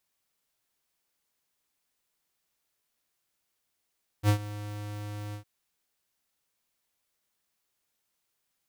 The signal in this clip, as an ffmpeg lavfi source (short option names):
-f lavfi -i "aevalsrc='0.1*(2*lt(mod(104*t,1),0.5)-1)':d=1.208:s=44100,afade=t=in:d=0.059,afade=t=out:st=0.059:d=0.089:silence=0.133,afade=t=out:st=1.11:d=0.098"